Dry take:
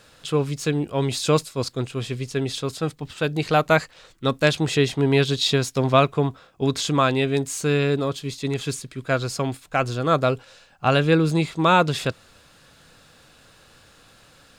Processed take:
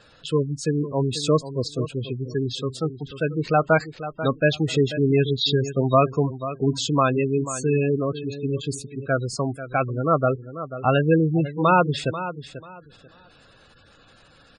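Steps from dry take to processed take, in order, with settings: feedback echo 0.489 s, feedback 22%, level -12.5 dB; spectral gate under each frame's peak -15 dB strong

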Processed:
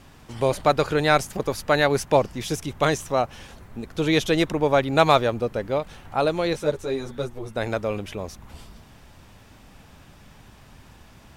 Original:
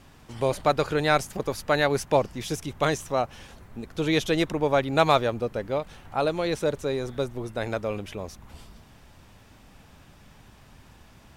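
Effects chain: 6.53–7.56 ensemble effect; gain +3 dB

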